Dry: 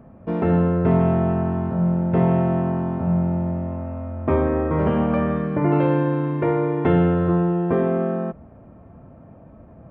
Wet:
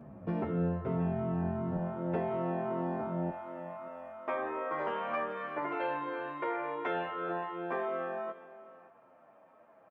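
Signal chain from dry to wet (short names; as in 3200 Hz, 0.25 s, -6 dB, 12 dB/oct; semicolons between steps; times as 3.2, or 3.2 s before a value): HPF 83 Hz 12 dB/oct, from 1.77 s 320 Hz, from 3.3 s 840 Hz; compressor 6:1, threshold -27 dBFS, peak gain reduction 13 dB; echo 0.57 s -17 dB; endless flanger 9.8 ms -2.7 Hz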